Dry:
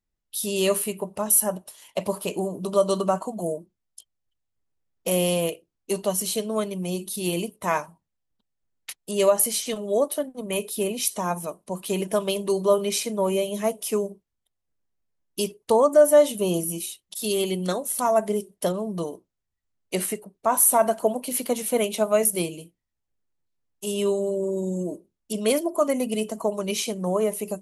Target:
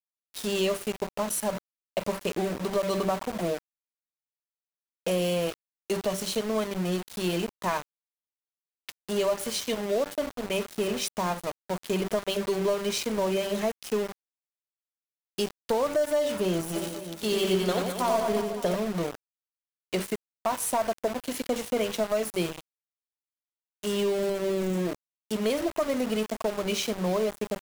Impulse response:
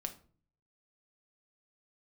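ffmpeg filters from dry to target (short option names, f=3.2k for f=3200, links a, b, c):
-filter_complex "[0:a]lowpass=5.8k,bandreject=f=97.58:t=h:w=4,bandreject=f=195.16:t=h:w=4,bandreject=f=292.74:t=h:w=4,bandreject=f=390.32:t=h:w=4,bandreject=f=487.9:t=h:w=4,bandreject=f=585.48:t=h:w=4,acompressor=threshold=-23dB:ratio=5,aeval=exprs='(tanh(7.94*val(0)+0.05)-tanh(0.05))/7.94':c=same,aeval=exprs='val(0)*gte(abs(val(0)),0.0224)':c=same,asplit=3[a][b][c];[a]afade=t=out:st=16.74:d=0.02[d];[b]aecho=1:1:90|207|359.1|556.8|813.9:0.631|0.398|0.251|0.158|0.1,afade=t=in:st=16.74:d=0.02,afade=t=out:st=18.75:d=0.02[e];[c]afade=t=in:st=18.75:d=0.02[f];[d][e][f]amix=inputs=3:normalize=0,volume=1.5dB"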